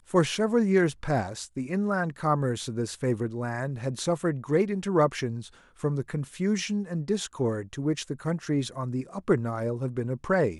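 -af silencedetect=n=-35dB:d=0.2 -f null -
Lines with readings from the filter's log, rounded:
silence_start: 5.47
silence_end: 5.83 | silence_duration: 0.37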